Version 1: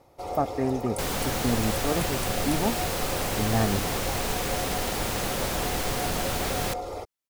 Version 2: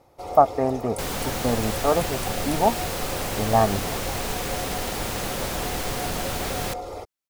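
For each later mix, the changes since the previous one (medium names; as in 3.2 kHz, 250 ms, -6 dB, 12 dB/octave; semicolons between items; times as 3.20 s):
speech: add high-order bell 820 Hz +11.5 dB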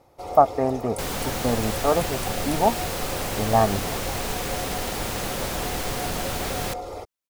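no change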